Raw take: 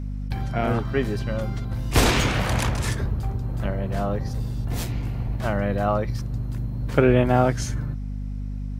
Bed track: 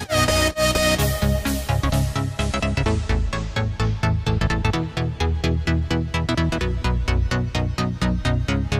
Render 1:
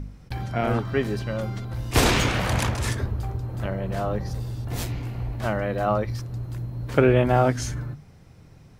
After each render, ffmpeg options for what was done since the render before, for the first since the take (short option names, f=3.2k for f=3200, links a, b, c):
-af "bandreject=f=50:t=h:w=4,bandreject=f=100:t=h:w=4,bandreject=f=150:t=h:w=4,bandreject=f=200:t=h:w=4,bandreject=f=250:t=h:w=4"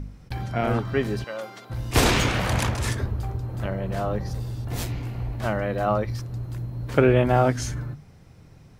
-filter_complex "[0:a]asettb=1/sr,asplit=3[a][b][c];[a]atrim=end=1.244[d];[b]atrim=start=1.24:end=1.7,asetpts=PTS-STARTPTS,afade=t=in:d=0.004:c=qsin,afade=t=out:st=0.456:d=0.004:c=qsin,highpass=490[e];[c]atrim=start=1.696[f];[d][e]acrossfade=d=0.004:c1=hsin:c2=qsin[g];[g][f]acrossfade=d=0.004:c1=qsin:c2=hsin"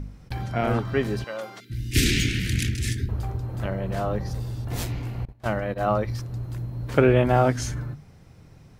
-filter_complex "[0:a]asettb=1/sr,asplit=3[a][b][c];[a]atrim=end=1.604[d];[b]atrim=start=1.6:end=3.09,asetpts=PTS-STARTPTS,afade=t=in:d=0.004:c=qsin,afade=t=out:st=1.486:d=0.004:c=qsin,asuperstop=centerf=810:order=8:qfactor=0.55[e];[c]atrim=start=3.086[f];[d][e]acrossfade=d=0.004:c1=hsin:c2=qsin[g];[g][f]acrossfade=d=0.004:c1=qsin:c2=hsin,asettb=1/sr,asplit=3[h][i][j];[h]atrim=end=5.254[k];[i]atrim=start=5.25:end=5.93,asetpts=PTS-STARTPTS,afade=t=in:d=0.004:c=qsin,afade=t=out:st=0.676:d=0.004:c=qsin,agate=range=-25dB:threshold=-27dB:ratio=16:release=100:detection=peak[l];[j]atrim=start=5.926[m];[k][l]acrossfade=d=0.004:c1=hsin:c2=qsin[n];[n][m]acrossfade=d=0.004:c1=qsin:c2=hsin"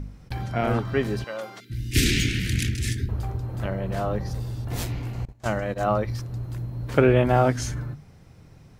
-filter_complex "[0:a]asettb=1/sr,asplit=3[a][b][c];[a]atrim=end=5.134[d];[b]atrim=start=5.13:end=5.84,asetpts=PTS-STARTPTS,afade=t=in:d=0.004:c=qsin,afade=t=out:st=0.706:d=0.004:c=qsin,equalizer=f=6.9k:w=1.5:g=10.5[e];[c]atrim=start=5.836[f];[d][e]acrossfade=d=0.004:c1=hsin:c2=qsin[g];[g][f]acrossfade=d=0.004:c1=qsin:c2=hsin"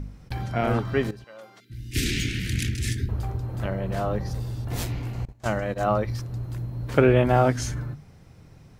-filter_complex "[0:a]asplit=2[a][b];[a]atrim=end=1.11,asetpts=PTS-STARTPTS,afade=t=out:st=1.106:d=0.004:c=hsin:silence=0.149624[c];[b]atrim=start=1.11,asetpts=PTS-STARTPTS,afade=t=in:d=1.89:silence=0.149624[d];[c][d]concat=n=2:v=0:a=1"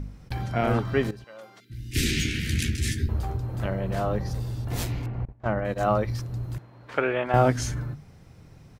-filter_complex "[0:a]asplit=3[a][b][c];[a]afade=t=out:st=1.98:d=0.02[d];[b]asplit=2[e][f];[f]adelay=13,volume=-5.5dB[g];[e][g]amix=inputs=2:normalize=0,afade=t=in:st=1.98:d=0.02,afade=t=out:st=3.35:d=0.02[h];[c]afade=t=in:st=3.35:d=0.02[i];[d][h][i]amix=inputs=3:normalize=0,asettb=1/sr,asplit=3[j][k][l];[j]atrim=end=5.064[m];[k]atrim=start=5.06:end=5.65,asetpts=PTS-STARTPTS,afade=t=in:d=0.004:c=qsin,afade=t=out:st=0.586:d=0.004:c=qsin,lowpass=1.7k[n];[l]atrim=start=5.646[o];[m][n]acrossfade=d=0.004:c1=hsin:c2=qsin[p];[p][o]acrossfade=d=0.004:c1=qsin:c2=hsin,asettb=1/sr,asplit=3[q][r][s];[q]atrim=end=6.584[t];[r]atrim=start=6.58:end=7.34,asetpts=PTS-STARTPTS,afade=t=in:d=0.004:c=qsin,afade=t=out:st=0.756:d=0.004:c=qsin,bandpass=f=1.5k:t=q:w=0.69[u];[s]atrim=start=7.336[v];[t][u]acrossfade=d=0.004:c1=hsin:c2=qsin[w];[w][v]acrossfade=d=0.004:c1=qsin:c2=hsin"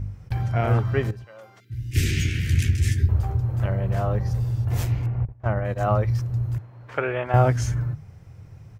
-af "equalizer=f=100:t=o:w=0.67:g=12,equalizer=f=250:t=o:w=0.67:g=-6,equalizer=f=4k:t=o:w=0.67:g=-6,equalizer=f=10k:t=o:w=0.67:g=-4"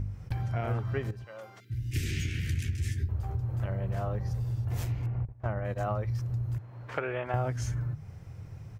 -af "acompressor=threshold=-31dB:ratio=3"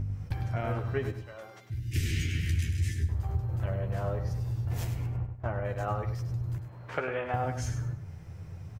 -filter_complex "[0:a]asplit=2[a][b];[b]adelay=12,volume=-7dB[c];[a][c]amix=inputs=2:normalize=0,aecho=1:1:100|200|300:0.355|0.0958|0.0259"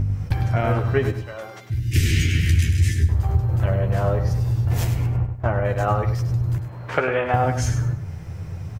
-af "volume=11dB"